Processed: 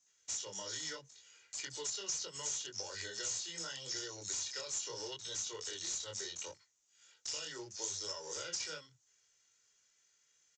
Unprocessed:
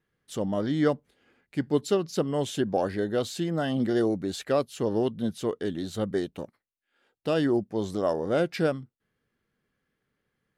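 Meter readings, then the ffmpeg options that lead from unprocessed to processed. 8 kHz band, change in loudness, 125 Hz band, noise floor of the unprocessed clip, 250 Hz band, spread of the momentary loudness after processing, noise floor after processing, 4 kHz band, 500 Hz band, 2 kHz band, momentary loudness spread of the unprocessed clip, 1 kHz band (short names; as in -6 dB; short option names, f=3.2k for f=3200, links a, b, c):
+8.5 dB, -11.5 dB, -25.0 dB, -82 dBFS, -30.0 dB, 6 LU, -74 dBFS, -0.5 dB, -22.5 dB, -9.5 dB, 9 LU, -17.5 dB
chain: -filter_complex "[0:a]aderivative,acrossover=split=230|4800[a][b][c];[b]adelay=60[d];[a]adelay=90[e];[e][d][c]amix=inputs=3:normalize=0,acrossover=split=150[f][g];[g]acompressor=threshold=-52dB:ratio=4[h];[f][h]amix=inputs=2:normalize=0,flanger=delay=19:depth=7.1:speed=0.74,acrossover=split=270|870|1800[i][j][k][l];[l]aeval=exprs='(mod(335*val(0)+1,2)-1)/335':c=same[m];[i][j][k][m]amix=inputs=4:normalize=0,equalizer=f=100:t=o:w=0.67:g=9,equalizer=f=630:t=o:w=0.67:g=-4,equalizer=f=6.3k:t=o:w=0.67:g=12,acompressor=threshold=-57dB:ratio=4,crystalizer=i=2:c=0,aecho=1:1:2.1:0.81,acrusher=bits=3:mode=log:mix=0:aa=0.000001,volume=12dB" -ar 16000 -c:a libvorbis -b:a 96k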